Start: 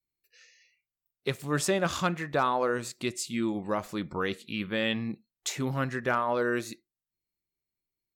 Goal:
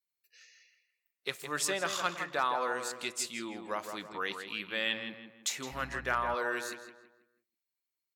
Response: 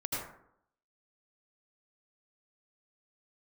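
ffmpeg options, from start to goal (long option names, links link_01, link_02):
-filter_complex "[0:a]highpass=frequency=1200:poles=1,asplit=2[link_01][link_02];[link_02]adelay=163,lowpass=frequency=2600:poles=1,volume=-7dB,asplit=2[link_03][link_04];[link_04]adelay=163,lowpass=frequency=2600:poles=1,volume=0.4,asplit=2[link_05][link_06];[link_06]adelay=163,lowpass=frequency=2600:poles=1,volume=0.4,asplit=2[link_07][link_08];[link_08]adelay=163,lowpass=frequency=2600:poles=1,volume=0.4,asplit=2[link_09][link_10];[link_10]adelay=163,lowpass=frequency=2600:poles=1,volume=0.4[link_11];[link_01][link_03][link_05][link_07][link_09][link_11]amix=inputs=6:normalize=0,asettb=1/sr,asplit=3[link_12][link_13][link_14];[link_12]atrim=end=5.724[link_15];[link_13]atrim=start=5.72:end=6.35,asetpts=PTS-STARTPTS,afade=type=in:duration=0.004:curve=qsin,afade=type=out:start_time=0.626:duration=0.004:curve=qsin,aeval=exprs='val(0)+0.00447*(sin(2*PI*60*n/s)+sin(2*PI*2*60*n/s)/2+sin(2*PI*3*60*n/s)/3+sin(2*PI*4*60*n/s)/4+sin(2*PI*5*60*n/s)/5)':channel_layout=same[link_16];[link_14]atrim=start=6.346[link_17];[link_15][link_16]acrossfade=duration=0.004:curve1=hsin:curve2=qsin[link_18];[link_18][link_17]acrossfade=duration=0.004:curve1=qsin:curve2=hsin"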